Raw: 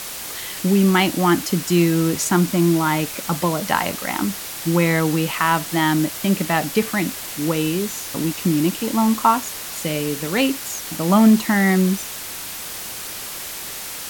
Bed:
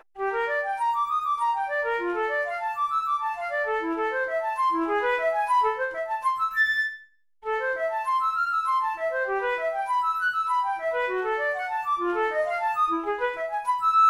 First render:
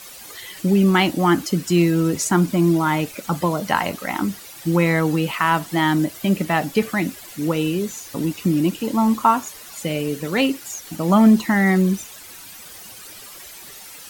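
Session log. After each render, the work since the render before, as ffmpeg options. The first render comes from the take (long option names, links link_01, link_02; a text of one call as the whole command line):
ffmpeg -i in.wav -af "afftdn=noise_reduction=12:noise_floor=-32" out.wav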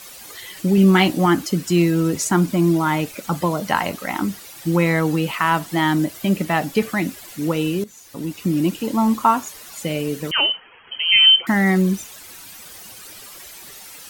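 ffmpeg -i in.wav -filter_complex "[0:a]asettb=1/sr,asplit=3[link_01][link_02][link_03];[link_01]atrim=end=0.764[link_04];[link_02]atrim=start=0.76:end=1.26,asetpts=PTS-STARTPTS,afade=type=in:duration=0.004:curve=qsin,afade=type=out:start_time=0.496:duration=0.004:curve=qsin,asplit=2[link_05][link_06];[link_06]adelay=16,volume=-6.5dB[link_07];[link_05][link_07]amix=inputs=2:normalize=0,atrim=end_sample=22050[link_08];[link_03]atrim=start=1.256[link_09];[link_04][link_08]acrossfade=duration=0.004:curve1=hsin:curve2=qsin[link_10];[link_10][link_09]acrossfade=duration=0.004:curve1=qsin:curve2=hsin,asettb=1/sr,asplit=3[link_11][link_12][link_13];[link_11]atrim=end=10.314[link_14];[link_12]atrim=start=10.31:end=11.47,asetpts=PTS-STARTPTS,afade=type=in:duration=0.004:curve=qsin,afade=type=out:start_time=1.156:duration=0.004:curve=qsin,lowpass=frequency=2800:width_type=q:width=0.5098,lowpass=frequency=2800:width_type=q:width=0.6013,lowpass=frequency=2800:width_type=q:width=0.9,lowpass=frequency=2800:width_type=q:width=2.563,afreqshift=-3300[link_15];[link_13]atrim=start=11.466[link_16];[link_14][link_15]acrossfade=duration=0.004:curve1=hsin:curve2=qsin[link_17];[link_17][link_16]acrossfade=duration=0.004:curve1=qsin:curve2=hsin,asplit=2[link_18][link_19];[link_18]atrim=end=7.84,asetpts=PTS-STARTPTS,afade=type=out:start_time=7.836:duration=0.004:curve=hsin:silence=0.16788[link_20];[link_19]atrim=start=7.84,asetpts=PTS-STARTPTS,afade=type=in:duration=0.8:silence=0.16788[link_21];[link_20][link_21]concat=n=2:v=0:a=1" out.wav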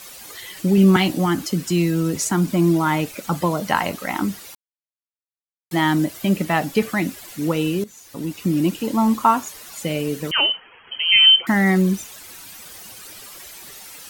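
ffmpeg -i in.wav -filter_complex "[0:a]asettb=1/sr,asplit=3[link_01][link_02][link_03];[link_01]atrim=end=0.964[link_04];[link_02]atrim=start=0.96:end=2.47,asetpts=PTS-STARTPTS,afade=type=in:duration=0.004:curve=qsin,afade=type=out:start_time=1.506:duration=0.004:curve=qsin,acrossover=split=190|3000[link_05][link_06][link_07];[link_06]acompressor=threshold=-22dB:ratio=2:attack=3.2:release=140:knee=2.83:detection=peak[link_08];[link_05][link_08][link_07]amix=inputs=3:normalize=0[link_09];[link_03]atrim=start=2.466[link_10];[link_04][link_09]acrossfade=duration=0.004:curve1=hsin:curve2=qsin[link_11];[link_11][link_10]acrossfade=duration=0.004:curve1=qsin:curve2=hsin,asplit=3[link_12][link_13][link_14];[link_12]atrim=end=4.55,asetpts=PTS-STARTPTS,afade=type=out:start_time=4.546:duration=0.004:curve=hsin[link_15];[link_13]atrim=start=4.55:end=5.71,asetpts=PTS-STARTPTS,volume=0[link_16];[link_14]atrim=start=5.71,asetpts=PTS-STARTPTS,afade=type=in:duration=0.004:curve=hsin[link_17];[link_15][link_16][link_17]concat=n=3:v=0:a=1" out.wav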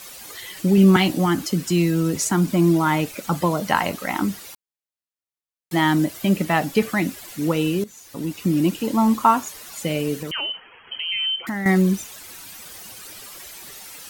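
ffmpeg -i in.wav -filter_complex "[0:a]asettb=1/sr,asplit=3[link_01][link_02][link_03];[link_01]atrim=end=10.224[link_04];[link_02]atrim=start=10.22:end=11.66,asetpts=PTS-STARTPTS,afade=type=in:duration=0.004:curve=qsin,afade=type=out:start_time=1.436:duration=0.004:curve=qsin,acompressor=threshold=-26dB:ratio=3:attack=3.2:release=140:knee=1:detection=peak[link_05];[link_03]atrim=start=11.656[link_06];[link_04][link_05]acrossfade=duration=0.004:curve1=hsin:curve2=qsin[link_07];[link_07][link_06]acrossfade=duration=0.004:curve1=qsin:curve2=hsin" out.wav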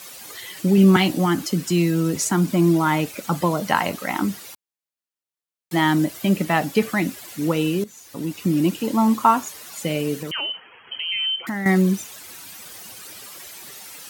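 ffmpeg -i in.wav -af "highpass=83" out.wav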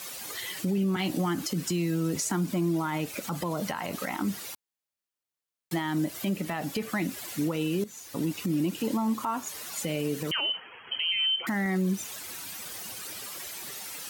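ffmpeg -i in.wav -af "acompressor=threshold=-23dB:ratio=6,alimiter=limit=-20dB:level=0:latency=1:release=57" out.wav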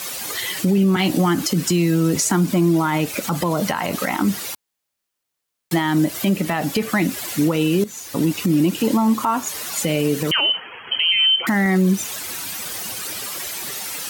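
ffmpeg -i in.wav -af "volume=10.5dB" out.wav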